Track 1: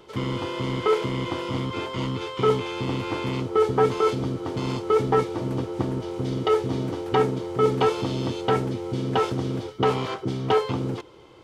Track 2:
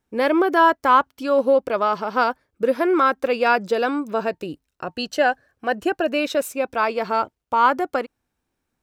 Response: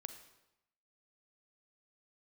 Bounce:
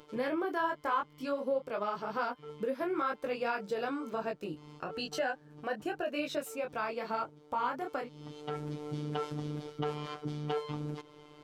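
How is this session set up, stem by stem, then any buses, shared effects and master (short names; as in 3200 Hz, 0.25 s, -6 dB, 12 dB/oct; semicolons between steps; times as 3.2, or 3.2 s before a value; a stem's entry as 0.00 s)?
-2.5 dB, 0.00 s, no send, robotiser 149 Hz; auto duck -20 dB, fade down 0.25 s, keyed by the second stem
-1.5 dB, 0.00 s, no send, detuned doubles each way 33 cents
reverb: off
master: compressor 2:1, threshold -38 dBFS, peak gain reduction 13 dB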